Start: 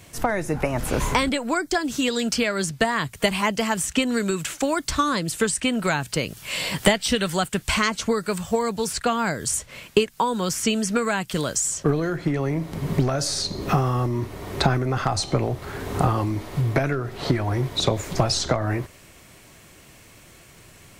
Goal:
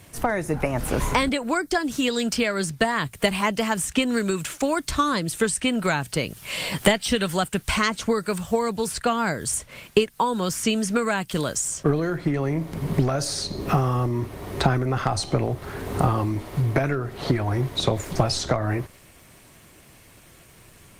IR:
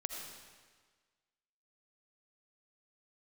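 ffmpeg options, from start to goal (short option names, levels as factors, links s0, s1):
-ar 48000 -c:a libopus -b:a 32k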